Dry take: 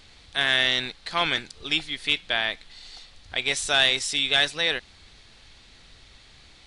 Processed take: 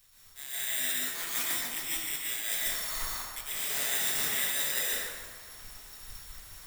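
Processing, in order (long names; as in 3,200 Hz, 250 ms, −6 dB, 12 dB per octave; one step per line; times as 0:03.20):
high-shelf EQ 4,800 Hz +8 dB
brickwall limiter −11.5 dBFS, peak gain reduction 5.5 dB
reversed playback
downward compressor 8 to 1, threshold −37 dBFS, peak gain reduction 19 dB
reversed playback
flanger 1.8 Hz, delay 4.7 ms, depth 8.3 ms, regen −55%
bad sample-rate conversion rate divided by 8×, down none, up zero stuff
on a send: delay with a band-pass on its return 139 ms, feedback 62%, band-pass 930 Hz, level −4.5 dB
on the sum: dense smooth reverb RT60 1.7 s, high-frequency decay 0.8×, pre-delay 105 ms, DRR −6 dB
multiband upward and downward expander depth 100%
level −2 dB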